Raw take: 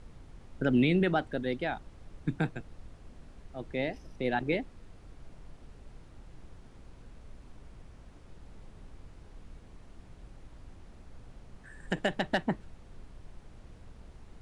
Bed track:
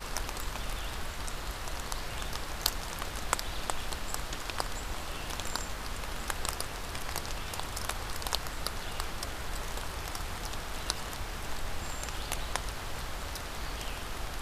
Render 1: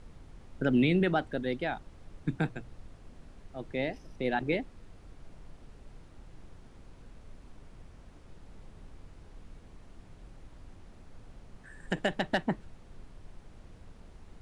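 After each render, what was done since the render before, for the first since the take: de-hum 60 Hz, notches 2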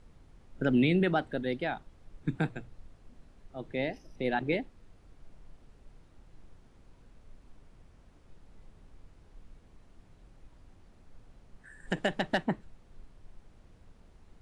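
noise print and reduce 6 dB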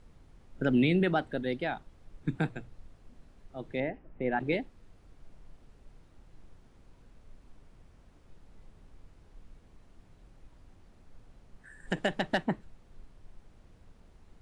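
3.8–4.4 LPF 2200 Hz 24 dB/oct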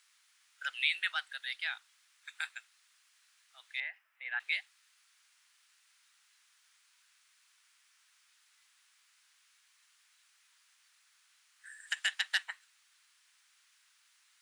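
inverse Chebyshev high-pass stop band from 310 Hz, stop band 70 dB; high shelf 3200 Hz +11.5 dB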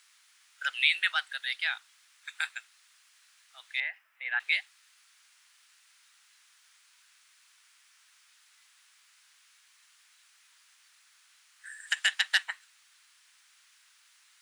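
gain +6 dB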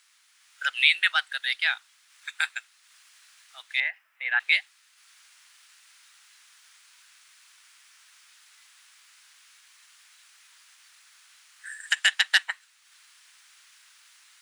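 AGC gain up to 6.5 dB; transient shaper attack -1 dB, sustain -5 dB

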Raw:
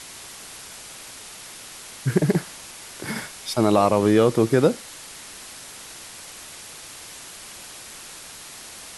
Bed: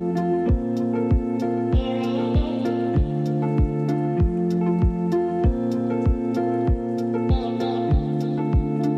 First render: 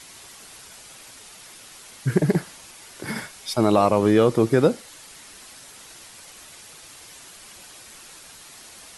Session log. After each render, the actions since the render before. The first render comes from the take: denoiser 6 dB, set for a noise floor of -41 dBFS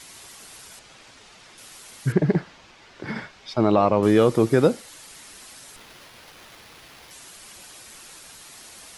0.79–1.58 air absorption 100 m; 2.12–4.03 air absorption 180 m; 5.76–7.11 running maximum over 5 samples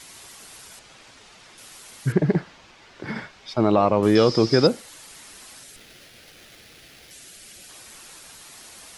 4.15–4.67 synth low-pass 5100 Hz, resonance Q 16; 5.63–7.69 bell 1000 Hz -13.5 dB 0.64 oct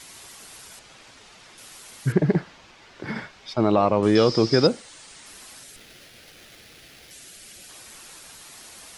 3.53–5.26 elliptic low-pass 9200 Hz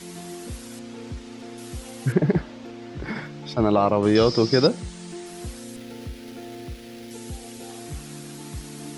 add bed -16 dB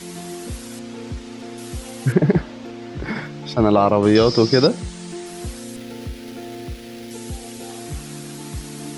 gain +4.5 dB; limiter -3 dBFS, peak gain reduction 2.5 dB

